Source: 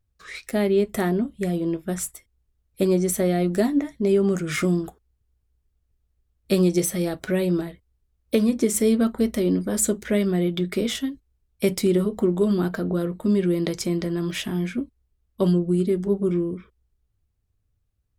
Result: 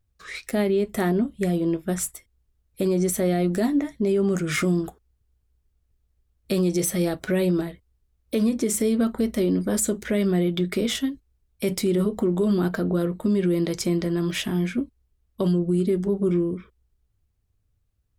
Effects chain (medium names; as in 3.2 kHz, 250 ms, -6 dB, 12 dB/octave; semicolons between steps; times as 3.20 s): peak limiter -16 dBFS, peak gain reduction 8.5 dB; trim +1.5 dB